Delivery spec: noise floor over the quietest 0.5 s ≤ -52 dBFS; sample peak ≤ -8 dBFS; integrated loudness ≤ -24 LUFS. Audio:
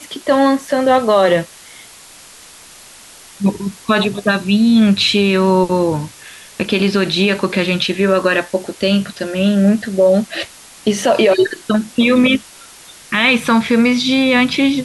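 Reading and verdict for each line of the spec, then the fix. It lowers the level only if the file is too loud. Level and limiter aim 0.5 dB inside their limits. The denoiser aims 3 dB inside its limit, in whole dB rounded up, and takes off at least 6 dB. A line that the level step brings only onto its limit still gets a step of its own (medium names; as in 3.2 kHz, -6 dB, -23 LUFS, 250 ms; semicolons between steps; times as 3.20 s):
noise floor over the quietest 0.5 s -40 dBFS: fail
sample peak -3.5 dBFS: fail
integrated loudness -14.5 LUFS: fail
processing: noise reduction 6 dB, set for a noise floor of -40 dBFS; trim -10 dB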